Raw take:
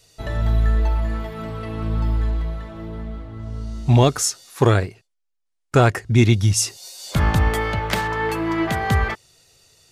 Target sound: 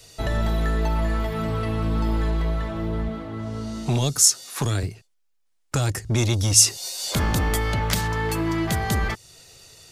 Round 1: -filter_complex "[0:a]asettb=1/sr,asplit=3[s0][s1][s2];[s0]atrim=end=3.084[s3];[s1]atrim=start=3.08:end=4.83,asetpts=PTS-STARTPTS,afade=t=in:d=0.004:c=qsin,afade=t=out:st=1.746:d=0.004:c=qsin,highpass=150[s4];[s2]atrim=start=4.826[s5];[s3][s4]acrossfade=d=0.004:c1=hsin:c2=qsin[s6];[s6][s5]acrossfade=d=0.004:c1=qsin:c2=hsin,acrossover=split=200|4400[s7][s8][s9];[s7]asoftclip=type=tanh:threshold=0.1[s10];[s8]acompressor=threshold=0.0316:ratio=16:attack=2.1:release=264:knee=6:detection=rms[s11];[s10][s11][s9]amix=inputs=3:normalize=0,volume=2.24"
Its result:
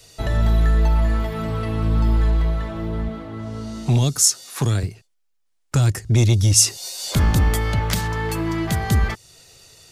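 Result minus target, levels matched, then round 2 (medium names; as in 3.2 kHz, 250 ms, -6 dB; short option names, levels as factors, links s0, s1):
saturation: distortion -6 dB
-filter_complex "[0:a]asettb=1/sr,asplit=3[s0][s1][s2];[s0]atrim=end=3.084[s3];[s1]atrim=start=3.08:end=4.83,asetpts=PTS-STARTPTS,afade=t=in:d=0.004:c=qsin,afade=t=out:st=1.746:d=0.004:c=qsin,highpass=150[s4];[s2]atrim=start=4.826[s5];[s3][s4]acrossfade=d=0.004:c1=hsin:c2=qsin[s6];[s6][s5]acrossfade=d=0.004:c1=qsin:c2=hsin,acrossover=split=200|4400[s7][s8][s9];[s7]asoftclip=type=tanh:threshold=0.0376[s10];[s8]acompressor=threshold=0.0316:ratio=16:attack=2.1:release=264:knee=6:detection=rms[s11];[s10][s11][s9]amix=inputs=3:normalize=0,volume=2.24"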